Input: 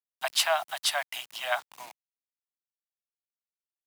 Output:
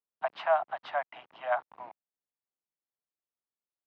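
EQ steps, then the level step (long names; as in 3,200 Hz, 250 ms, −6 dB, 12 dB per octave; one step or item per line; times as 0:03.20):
low-pass filter 1,100 Hz 12 dB per octave
high-frequency loss of the air 180 metres
low-shelf EQ 79 Hz −11 dB
+3.5 dB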